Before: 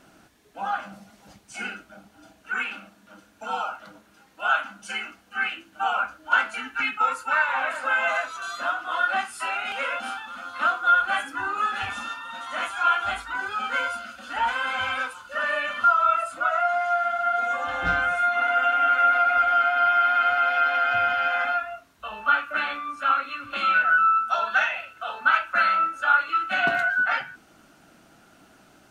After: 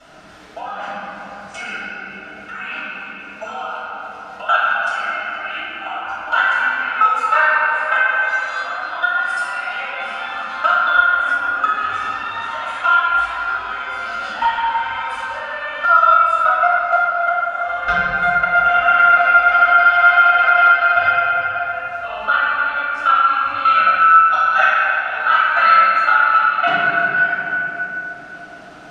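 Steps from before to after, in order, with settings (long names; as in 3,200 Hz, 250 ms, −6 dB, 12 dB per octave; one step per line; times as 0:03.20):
low-pass filter 6,700 Hz 12 dB per octave
parametric band 240 Hz −9 dB 0.86 octaves
output level in coarse steps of 22 dB
convolution reverb RT60 3.1 s, pre-delay 3 ms, DRR −13 dB
multiband upward and downward compressor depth 40%
level −2.5 dB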